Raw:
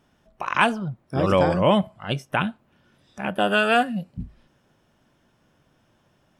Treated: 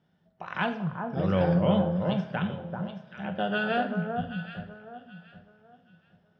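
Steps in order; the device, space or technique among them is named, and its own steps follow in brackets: guitar cabinet (cabinet simulation 97–4400 Hz, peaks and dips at 99 Hz +5 dB, 170 Hz +9 dB, 310 Hz -5 dB, 1.1 kHz -8 dB, 2.5 kHz -8 dB); echo whose repeats swap between lows and highs 388 ms, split 1.3 kHz, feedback 50%, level -4.5 dB; two-slope reverb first 0.53 s, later 2.8 s, from -18 dB, DRR 6 dB; trim -8 dB

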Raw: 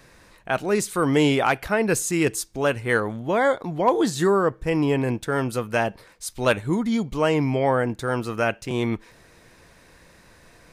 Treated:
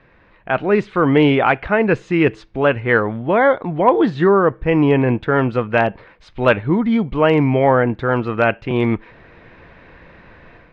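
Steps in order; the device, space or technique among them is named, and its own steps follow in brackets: action camera in a waterproof case (low-pass 2.9 kHz 24 dB/octave; level rider gain up to 9 dB; AAC 128 kbps 48 kHz)

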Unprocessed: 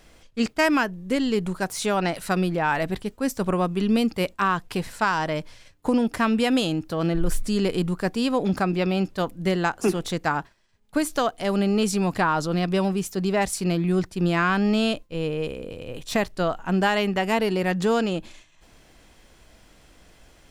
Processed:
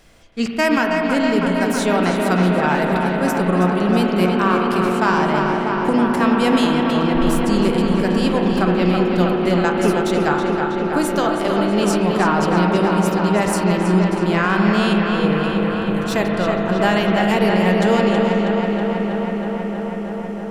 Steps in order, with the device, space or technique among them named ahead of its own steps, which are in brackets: dub delay into a spring reverb (filtered feedback delay 322 ms, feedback 84%, low-pass 4.6 kHz, level -5 dB; spring tank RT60 3.4 s, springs 33/39 ms, chirp 55 ms, DRR 2 dB); trim +2 dB

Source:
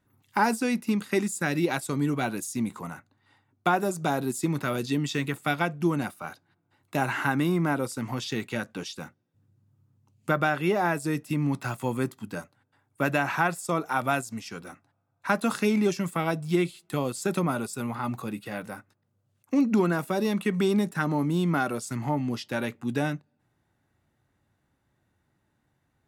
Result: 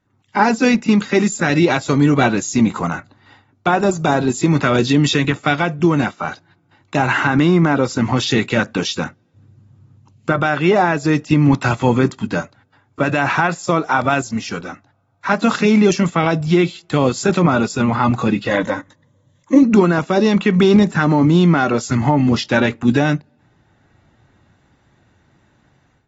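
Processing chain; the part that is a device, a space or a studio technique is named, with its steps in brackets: 18.49–19.63 s: rippled EQ curve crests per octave 1.1, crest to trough 11 dB; low-bitrate web radio (level rider gain up to 14 dB; peak limiter -7 dBFS, peak gain reduction 6 dB; trim +2.5 dB; AAC 24 kbps 44.1 kHz)

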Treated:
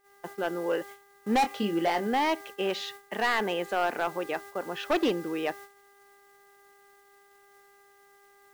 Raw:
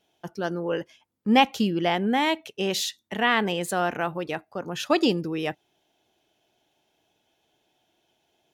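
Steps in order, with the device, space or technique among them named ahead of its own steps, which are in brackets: aircraft radio (band-pass 320–2600 Hz; hard clipper -20 dBFS, distortion -9 dB; mains buzz 400 Hz, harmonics 5, -47 dBFS -2 dB/octave; white noise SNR 23 dB; gate -43 dBFS, range -23 dB); 1.40–2.07 s: doubling 24 ms -8 dB

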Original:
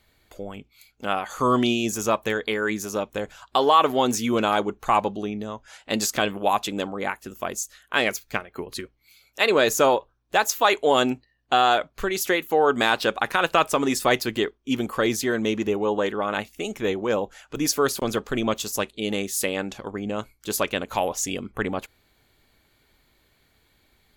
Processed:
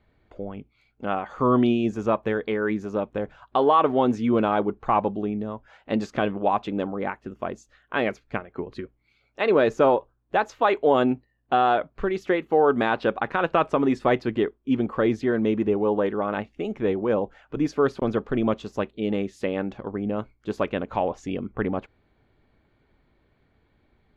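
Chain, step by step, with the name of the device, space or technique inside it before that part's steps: phone in a pocket (low-pass 3.1 kHz 12 dB/octave; peaking EQ 180 Hz +3 dB 2.8 oct; treble shelf 2 kHz -11 dB)

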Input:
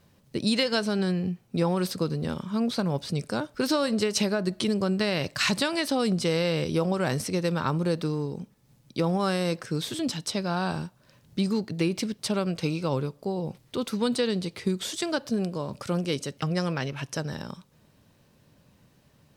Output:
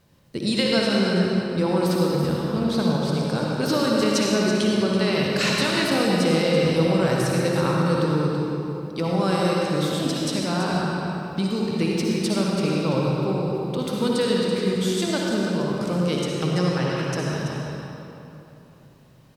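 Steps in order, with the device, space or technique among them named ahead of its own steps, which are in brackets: cave (delay 332 ms -9.5 dB; reverberation RT60 3.1 s, pre-delay 53 ms, DRR -3 dB)

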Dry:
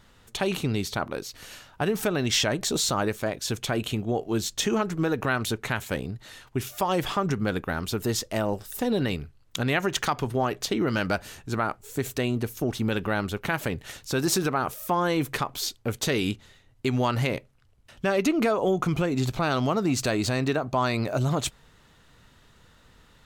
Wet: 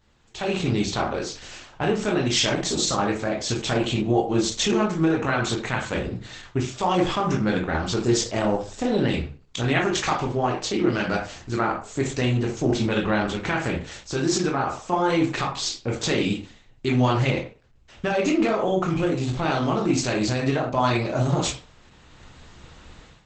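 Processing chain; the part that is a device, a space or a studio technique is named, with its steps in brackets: speakerphone in a meeting room (reverberation RT60 0.40 s, pre-delay 14 ms, DRR -1.5 dB; level rider gain up to 15.5 dB; trim -8 dB; Opus 12 kbps 48 kHz)

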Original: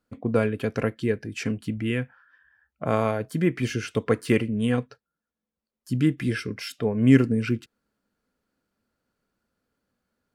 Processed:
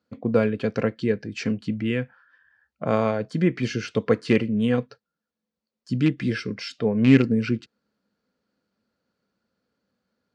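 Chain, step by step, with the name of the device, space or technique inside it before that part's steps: car door speaker with a rattle (rattle on loud lows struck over -17 dBFS, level -18 dBFS; cabinet simulation 82–6600 Hz, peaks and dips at 200 Hz +5 dB, 510 Hz +4 dB, 4.4 kHz +5 dB)

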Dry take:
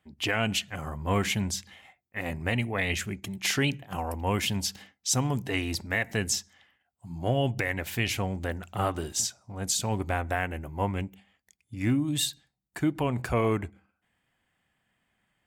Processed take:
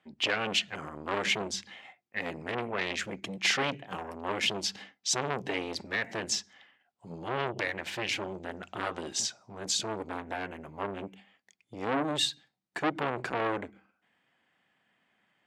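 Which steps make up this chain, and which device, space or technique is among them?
public-address speaker with an overloaded transformer (transformer saturation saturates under 1.7 kHz; band-pass 210–5000 Hz); trim +3.5 dB

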